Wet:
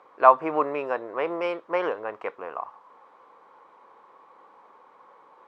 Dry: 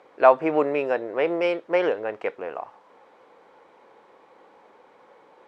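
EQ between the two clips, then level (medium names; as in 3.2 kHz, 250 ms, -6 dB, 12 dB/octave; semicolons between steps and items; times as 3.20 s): peaking EQ 1.1 kHz +13.5 dB 0.61 oct; -6.0 dB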